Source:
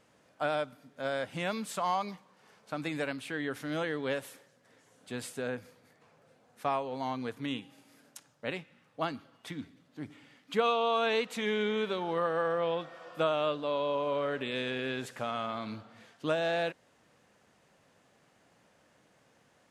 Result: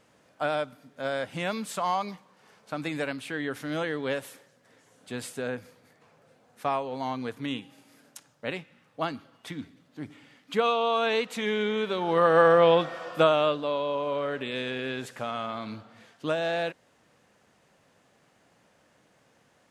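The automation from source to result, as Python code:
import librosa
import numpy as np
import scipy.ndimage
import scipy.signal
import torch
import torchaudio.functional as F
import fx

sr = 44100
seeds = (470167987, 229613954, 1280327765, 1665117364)

y = fx.gain(x, sr, db=fx.line((11.88, 3.0), (12.39, 12.0), (12.89, 12.0), (13.83, 2.0)))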